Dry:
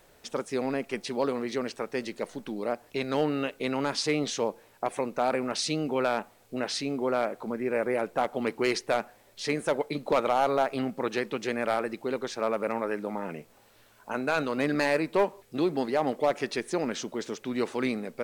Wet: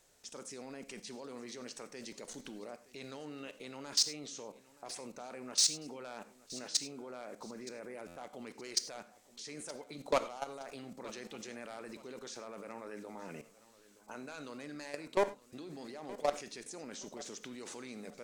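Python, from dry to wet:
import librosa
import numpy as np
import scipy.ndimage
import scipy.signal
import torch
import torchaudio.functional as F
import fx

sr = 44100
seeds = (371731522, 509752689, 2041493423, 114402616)

p1 = fx.peak_eq(x, sr, hz=6900.0, db=13.5, octaves=1.4)
p2 = fx.level_steps(p1, sr, step_db=22)
p3 = 10.0 ** (-16.0 / 20.0) * np.tanh(p2 / 10.0 ** (-16.0 / 20.0))
p4 = p3 + fx.echo_feedback(p3, sr, ms=921, feedback_pct=29, wet_db=-19.0, dry=0)
p5 = fx.rev_gated(p4, sr, seeds[0], gate_ms=120, shape='flat', drr_db=11.5)
p6 = fx.buffer_glitch(p5, sr, at_s=(8.07,), block=512, repeats=7)
y = p6 * librosa.db_to_amplitude(-2.5)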